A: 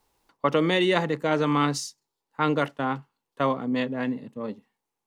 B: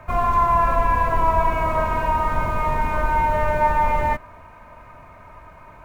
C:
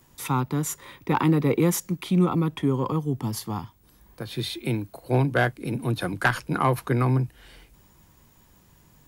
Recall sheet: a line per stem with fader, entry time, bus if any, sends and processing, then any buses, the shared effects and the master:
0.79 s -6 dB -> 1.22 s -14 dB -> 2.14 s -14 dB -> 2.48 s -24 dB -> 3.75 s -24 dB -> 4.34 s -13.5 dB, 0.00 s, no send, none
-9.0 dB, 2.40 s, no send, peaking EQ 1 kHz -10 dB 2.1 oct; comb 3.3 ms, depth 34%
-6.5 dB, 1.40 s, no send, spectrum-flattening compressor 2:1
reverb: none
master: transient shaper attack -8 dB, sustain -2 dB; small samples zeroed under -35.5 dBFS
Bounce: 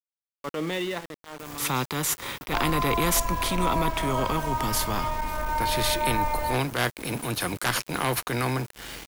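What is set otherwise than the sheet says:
stem B: missing peaking EQ 1 kHz -10 dB 2.1 oct; stem C -6.5 dB -> +4.0 dB

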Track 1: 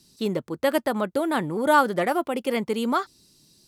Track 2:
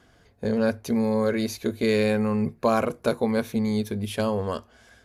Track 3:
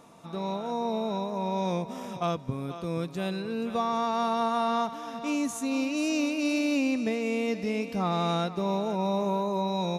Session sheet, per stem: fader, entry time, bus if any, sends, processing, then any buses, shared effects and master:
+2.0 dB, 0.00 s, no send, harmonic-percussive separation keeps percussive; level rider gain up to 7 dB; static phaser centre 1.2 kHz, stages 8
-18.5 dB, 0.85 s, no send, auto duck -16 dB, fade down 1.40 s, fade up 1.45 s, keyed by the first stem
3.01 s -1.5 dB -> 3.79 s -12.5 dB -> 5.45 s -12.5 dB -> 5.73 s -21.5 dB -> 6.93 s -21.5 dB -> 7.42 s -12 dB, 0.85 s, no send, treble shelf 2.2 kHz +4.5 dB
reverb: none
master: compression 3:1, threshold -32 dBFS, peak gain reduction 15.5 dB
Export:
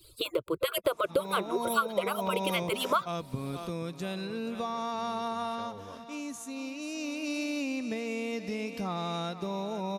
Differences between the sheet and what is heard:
stem 1 +2.0 dB -> +13.0 dB; stem 2: entry 0.85 s -> 1.40 s; stem 3 -1.5 dB -> +10.0 dB

